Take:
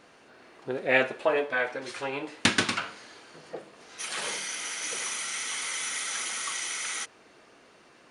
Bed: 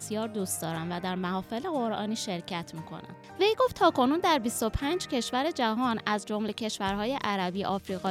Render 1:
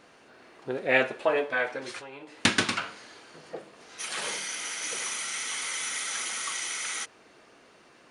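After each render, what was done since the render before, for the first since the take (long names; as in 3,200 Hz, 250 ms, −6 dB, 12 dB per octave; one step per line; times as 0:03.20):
0:01.99–0:02.45: downward compressor 2.5 to 1, threshold −46 dBFS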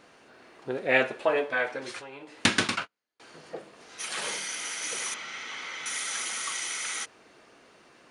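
0:02.59–0:03.20: noise gate −35 dBFS, range −41 dB
0:05.14–0:05.86: high-frequency loss of the air 200 metres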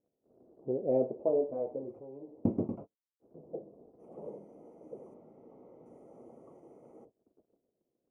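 inverse Chebyshev low-pass filter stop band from 1,500 Hz, stop band 50 dB
noise gate −57 dBFS, range −23 dB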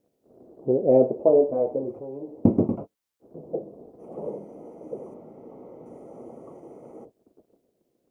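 level +11 dB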